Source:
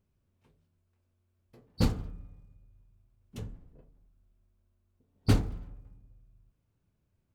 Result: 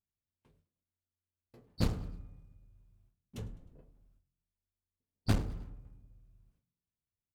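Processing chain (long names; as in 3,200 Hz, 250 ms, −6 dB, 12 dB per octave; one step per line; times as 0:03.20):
noise gate with hold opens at −57 dBFS
asymmetric clip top −33.5 dBFS
echo with shifted repeats 103 ms, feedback 47%, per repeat +44 Hz, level −21.5 dB
level −1.5 dB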